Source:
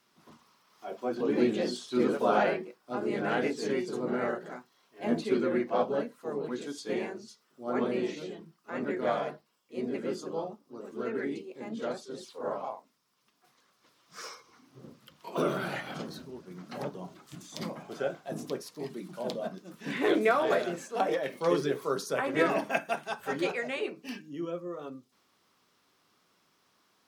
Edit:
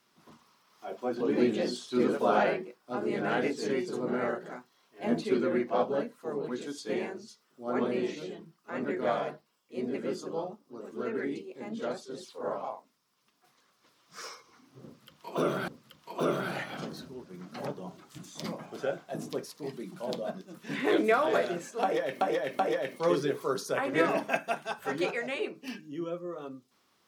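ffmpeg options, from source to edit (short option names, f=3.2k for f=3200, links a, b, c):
-filter_complex "[0:a]asplit=4[a][b][c][d];[a]atrim=end=15.682[e];[b]atrim=start=14.848:end=21.382[f];[c]atrim=start=20.998:end=21.382[g];[d]atrim=start=20.998[h];[e][f]acrossfade=d=0.004:c1=hsin:c2=hsin[i];[i][g]acrossfade=d=0.004:c1=hsin:c2=hsin[j];[j][h]acrossfade=d=0.004:c1=hsin:c2=hsin"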